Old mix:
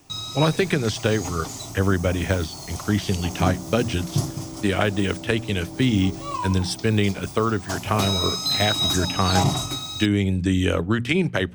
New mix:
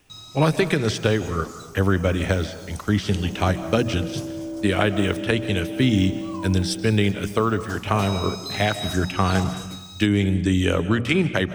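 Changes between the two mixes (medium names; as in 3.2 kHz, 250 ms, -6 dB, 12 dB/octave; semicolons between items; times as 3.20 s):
first sound -10.0 dB; reverb: on, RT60 1.0 s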